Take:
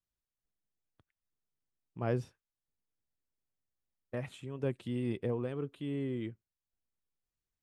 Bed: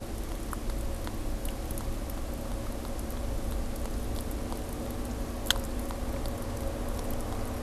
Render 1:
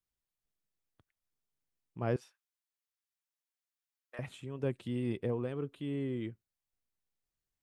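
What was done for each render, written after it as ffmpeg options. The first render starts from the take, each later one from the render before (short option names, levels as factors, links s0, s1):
-filter_complex "[0:a]asettb=1/sr,asplit=3[s0][s1][s2];[s0]atrim=end=2.164[s3];[s1]atrim=start=2.16:end=4.19,asetpts=PTS-STARTPTS,afade=t=in:d=0.004:c=qsin,afade=t=out:st=2.026:d=0.004:c=qsin,highpass=1100[s4];[s2]atrim=start=4.186[s5];[s3][s4]acrossfade=d=0.004:c1=hsin:c2=qsin[s6];[s6][s5]acrossfade=d=0.004:c1=qsin:c2=hsin"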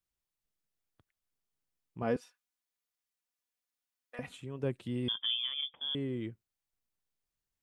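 -filter_complex "[0:a]asettb=1/sr,asplit=3[s0][s1][s2];[s0]atrim=end=2.024[s3];[s1]atrim=start=2.02:end=4.37,asetpts=PTS-STARTPTS,afade=t=in:d=0.004:c=qsin,afade=t=out:st=2.346:d=0.004:c=qsin,aecho=1:1:4.1:0.65,atrim=end_sample=103635[s4];[s2]atrim=start=4.366[s5];[s3][s4]acrossfade=d=0.004:c1=hsin:c2=qsin[s6];[s6][s5]acrossfade=d=0.004:c1=qsin:c2=hsin,asettb=1/sr,asplit=3[s7][s8][s9];[s7]atrim=end=5.084[s10];[s8]atrim=start=5.08:end=5.95,asetpts=PTS-STARTPTS,afade=t=in:d=0.004:c=qsin,afade=t=out:st=0.866:d=0.004:c=qsin,lowpass=f=3100:t=q:w=0.5098,lowpass=f=3100:t=q:w=0.6013,lowpass=f=3100:t=q:w=0.9,lowpass=f=3100:t=q:w=2.563,afreqshift=-3600[s11];[s9]atrim=start=5.946[s12];[s10][s11]acrossfade=d=0.004:c1=hsin:c2=qsin[s13];[s13][s12]acrossfade=d=0.004:c1=qsin:c2=hsin"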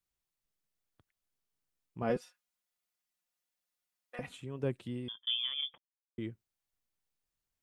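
-filter_complex "[0:a]asettb=1/sr,asplit=3[s0][s1][s2];[s0]atrim=end=2.094[s3];[s1]atrim=start=2.09:end=4.21,asetpts=PTS-STARTPTS,afade=t=in:d=0.004:c=qsin,afade=t=out:st=2.116:d=0.004:c=qsin,aecho=1:1:5.6:0.65,atrim=end_sample=93492[s4];[s2]atrim=start=4.206[s5];[s3][s4]acrossfade=d=0.004:c1=hsin:c2=qsin[s6];[s6][s5]acrossfade=d=0.004:c1=qsin:c2=hsin,asplit=4[s7][s8][s9][s10];[s7]atrim=end=5.27,asetpts=PTS-STARTPTS,afade=t=out:st=4.77:d=0.5[s11];[s8]atrim=start=5.27:end=5.78,asetpts=PTS-STARTPTS,afade=t=in:d=0.004:c=hsin,afade=t=out:st=0.506:d=0.004:c=hsin[s12];[s9]atrim=start=5.78:end=6.18,asetpts=PTS-STARTPTS,volume=0[s13];[s10]atrim=start=6.18,asetpts=PTS-STARTPTS,afade=t=in:d=0.004:c=hsin[s14];[s11][s12][s13][s14]concat=n=4:v=0:a=1"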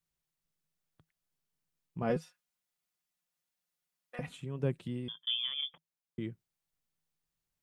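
-af "equalizer=f=160:t=o:w=0.33:g=12"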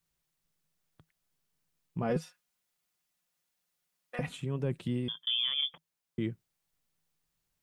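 -af "acontrast=39,alimiter=limit=0.0794:level=0:latency=1:release=16"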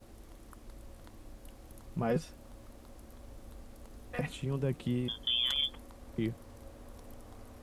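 -filter_complex "[1:a]volume=0.141[s0];[0:a][s0]amix=inputs=2:normalize=0"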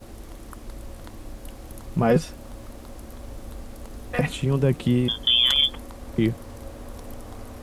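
-af "volume=3.98"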